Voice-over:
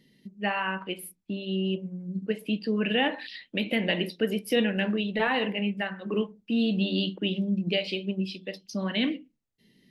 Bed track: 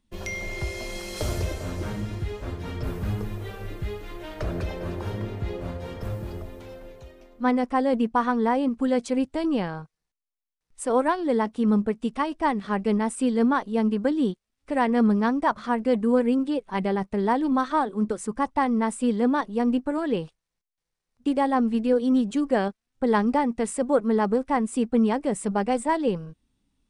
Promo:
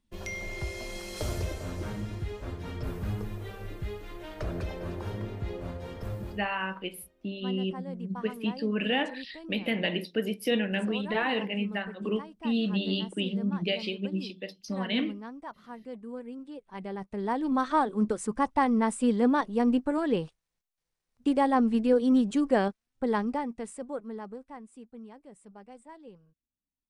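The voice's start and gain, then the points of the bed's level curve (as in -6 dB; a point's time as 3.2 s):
5.95 s, -2.5 dB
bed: 6.3 s -4.5 dB
6.5 s -19 dB
16.34 s -19 dB
17.75 s -1.5 dB
22.69 s -1.5 dB
24.93 s -25 dB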